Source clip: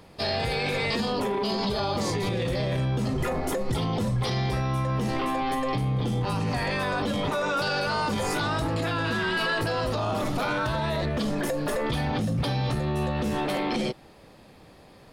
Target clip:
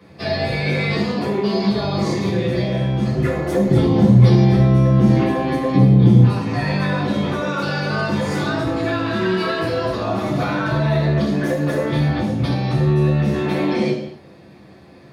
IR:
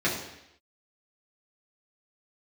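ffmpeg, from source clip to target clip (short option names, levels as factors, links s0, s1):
-filter_complex "[0:a]asettb=1/sr,asplit=3[s0][s1][s2];[s0]atrim=end=3.544[s3];[s1]atrim=start=3.54:end=6.23,asetpts=PTS-STARTPTS,afade=t=in:d=0.004:c=qsin,afade=t=out:st=2.686:d=0.004:c=qsin,equalizer=f=160:w=0.4:g=8.5[s4];[s2]atrim=start=6.226[s5];[s3][s4]acrossfade=d=0.004:c1=hsin:c2=qsin[s6];[s6][s5]acrossfade=d=0.004:c1=qsin:c2=hsin[s7];[1:a]atrim=start_sample=2205,afade=t=out:st=0.34:d=0.01,atrim=end_sample=15435[s8];[s7][s8]afir=irnorm=-1:irlink=0,volume=0.422"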